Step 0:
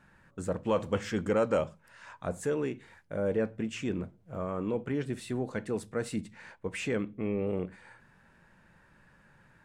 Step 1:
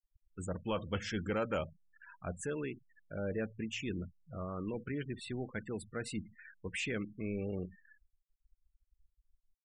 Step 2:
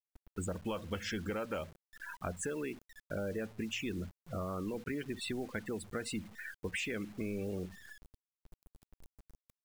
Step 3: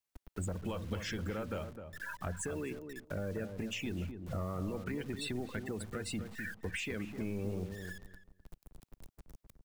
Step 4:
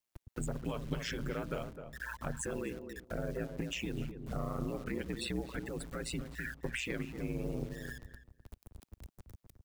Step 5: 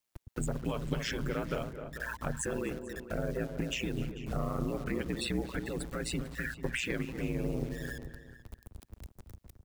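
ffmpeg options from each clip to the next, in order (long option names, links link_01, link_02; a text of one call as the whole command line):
ffmpeg -i in.wav -af "equalizer=frequency=125:width_type=o:width=1:gain=-7,equalizer=frequency=250:width_type=o:width=1:gain=-7,equalizer=frequency=500:width_type=o:width=1:gain=-10,equalizer=frequency=1000:width_type=o:width=1:gain=-8,equalizer=frequency=2000:width_type=o:width=1:gain=-3,equalizer=frequency=8000:width_type=o:width=1:gain=-4,afftfilt=real='re*gte(hypot(re,im),0.00501)':imag='im*gte(hypot(re,im),0.00501)':win_size=1024:overlap=0.75,volume=3.5dB" out.wav
ffmpeg -i in.wav -af "equalizer=frequency=130:width_type=o:width=0.45:gain=-9.5,acompressor=threshold=-45dB:ratio=6,acrusher=bits=10:mix=0:aa=0.000001,volume=9.5dB" out.wav
ffmpeg -i in.wav -filter_complex "[0:a]acrossover=split=130[link_01][link_02];[link_02]acompressor=threshold=-47dB:ratio=2[link_03];[link_01][link_03]amix=inputs=2:normalize=0,asoftclip=type=tanh:threshold=-34dB,asplit=2[link_04][link_05];[link_05]adelay=257,lowpass=frequency=1000:poles=1,volume=-7dB,asplit=2[link_06][link_07];[link_07]adelay=257,lowpass=frequency=1000:poles=1,volume=0.17,asplit=2[link_08][link_09];[link_09]adelay=257,lowpass=frequency=1000:poles=1,volume=0.17[link_10];[link_04][link_06][link_08][link_10]amix=inputs=4:normalize=0,volume=6dB" out.wav
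ffmpeg -i in.wav -af "aeval=exprs='val(0)*sin(2*PI*60*n/s)':channel_layout=same,volume=3.5dB" out.wav
ffmpeg -i in.wav -filter_complex "[0:a]asplit=2[link_01][link_02];[link_02]adelay=443.1,volume=-13dB,highshelf=frequency=4000:gain=-9.97[link_03];[link_01][link_03]amix=inputs=2:normalize=0,volume=3.5dB" out.wav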